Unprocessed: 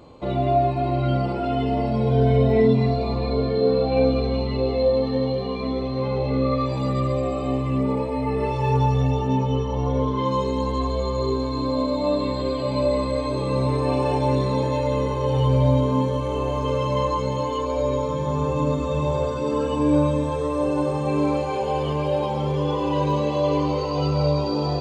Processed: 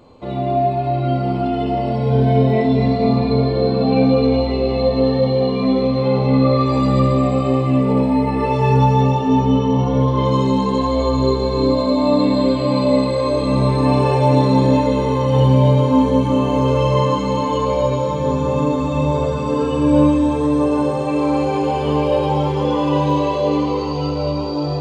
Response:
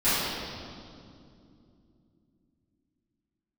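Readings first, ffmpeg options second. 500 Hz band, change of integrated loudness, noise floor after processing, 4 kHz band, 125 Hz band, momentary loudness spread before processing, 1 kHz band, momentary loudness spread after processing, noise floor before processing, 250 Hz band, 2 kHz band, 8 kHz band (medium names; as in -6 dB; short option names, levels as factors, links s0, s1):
+4.5 dB, +6.0 dB, -21 dBFS, +5.5 dB, +5.5 dB, 5 LU, +5.5 dB, 5 LU, -26 dBFS, +8.0 dB, +5.0 dB, no reading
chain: -filter_complex "[0:a]asplit=2[s0][s1];[1:a]atrim=start_sample=2205[s2];[s1][s2]afir=irnorm=-1:irlink=0,volume=0.126[s3];[s0][s3]amix=inputs=2:normalize=0,dynaudnorm=f=290:g=13:m=3.76,volume=0.794"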